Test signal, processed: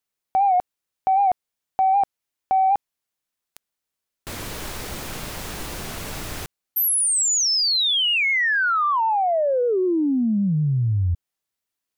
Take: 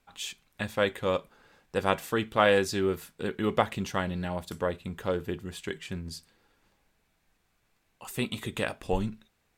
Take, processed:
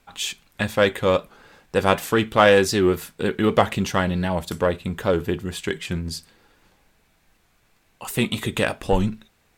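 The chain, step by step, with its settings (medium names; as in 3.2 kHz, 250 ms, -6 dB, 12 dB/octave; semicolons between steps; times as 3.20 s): in parallel at -3 dB: saturation -23 dBFS; on the sum: warped record 78 rpm, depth 100 cents; trim +5 dB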